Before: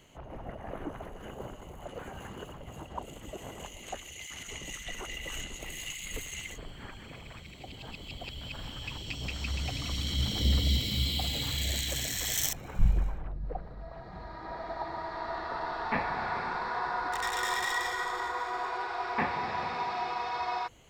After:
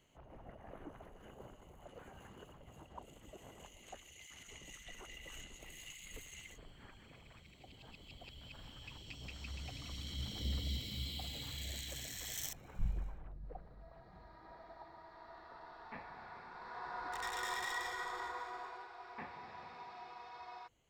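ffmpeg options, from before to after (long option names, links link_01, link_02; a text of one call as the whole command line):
ffmpeg -i in.wav -af "volume=-2.5dB,afade=type=out:start_time=13.78:duration=1.18:silence=0.473151,afade=type=in:start_time=16.51:duration=0.72:silence=0.316228,afade=type=out:start_time=18.25:duration=0.66:silence=0.354813" out.wav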